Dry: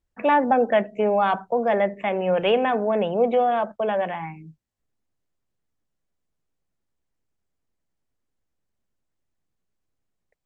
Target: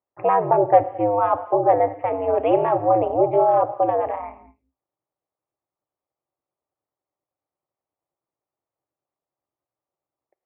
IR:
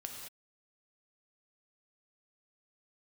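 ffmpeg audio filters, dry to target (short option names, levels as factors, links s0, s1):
-filter_complex "[0:a]highpass=f=200:w=0.5412,highpass=f=200:w=1.3066,equalizer=f=220:t=q:w=4:g=3,equalizer=f=310:t=q:w=4:g=-8,equalizer=f=470:t=q:w=4:g=5,equalizer=f=680:t=q:w=4:g=10,equalizer=f=1100:t=q:w=4:g=8,equalizer=f=1600:t=q:w=4:g=-9,lowpass=f=2100:w=0.5412,lowpass=f=2100:w=1.3066,asplit=2[s0][s1];[1:a]atrim=start_sample=2205[s2];[s1][s2]afir=irnorm=-1:irlink=0,volume=0.422[s3];[s0][s3]amix=inputs=2:normalize=0,aeval=exprs='val(0)*sin(2*PI*100*n/s)':c=same,volume=0.75"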